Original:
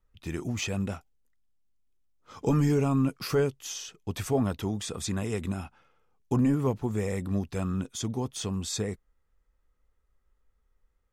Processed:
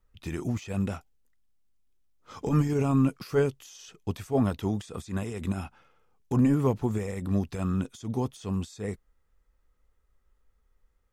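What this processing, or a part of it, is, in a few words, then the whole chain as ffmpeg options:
de-esser from a sidechain: -filter_complex "[0:a]asplit=2[link_01][link_02];[link_02]highpass=frequency=5900:width=0.5412,highpass=frequency=5900:width=1.3066,apad=whole_len=490517[link_03];[link_01][link_03]sidechaincompress=threshold=-49dB:ratio=20:attack=0.89:release=75,volume=2.5dB"

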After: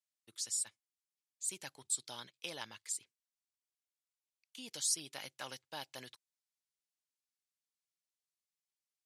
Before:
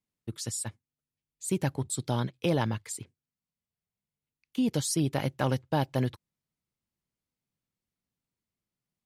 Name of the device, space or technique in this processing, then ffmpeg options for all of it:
piezo pickup straight into a mixer: -af "lowpass=7700,aderivative,volume=2dB"

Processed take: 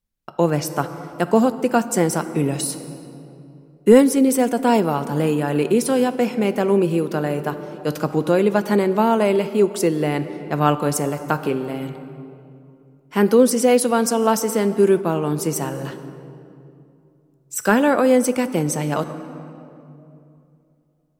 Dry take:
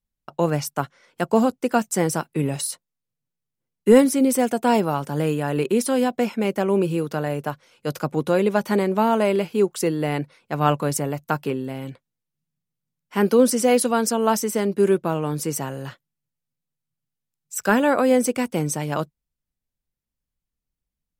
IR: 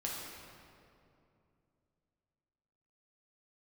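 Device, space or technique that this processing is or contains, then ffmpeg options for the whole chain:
compressed reverb return: -filter_complex "[0:a]equalizer=frequency=340:width=1.5:gain=2.5,asplit=2[link_01][link_02];[1:a]atrim=start_sample=2205[link_03];[link_02][link_03]afir=irnorm=-1:irlink=0,acompressor=threshold=-19dB:ratio=6,volume=-7dB[link_04];[link_01][link_04]amix=inputs=2:normalize=0"

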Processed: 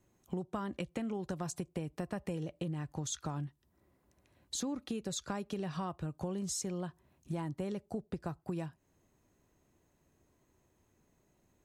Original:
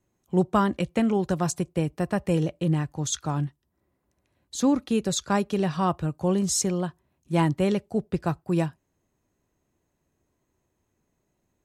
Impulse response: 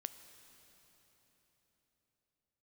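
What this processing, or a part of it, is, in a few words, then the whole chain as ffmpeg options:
serial compression, peaks first: -filter_complex "[0:a]acompressor=threshold=-34dB:ratio=4,acompressor=threshold=-41dB:ratio=2,asettb=1/sr,asplit=3[link_01][link_02][link_03];[link_01]atrim=end=7.334[link_04];[link_02]atrim=start=7.33:end=8.4,asetpts=PTS-STARTPTS,afade=type=in:duration=0.004:curve=qsin,afade=type=out:start_time=1.066:duration=0.004:curve=qsin,equalizer=frequency=2700:width=1.3:gain=-4[link_05];[link_03]atrim=start=8.396[link_06];[link_04][link_05]acrossfade=duration=0.004:curve1=hsin:curve2=qsin[link_07];[link_07][link_06]acrossfade=duration=0.004:curve1=qsin:curve2=hsin,volume=2.5dB"

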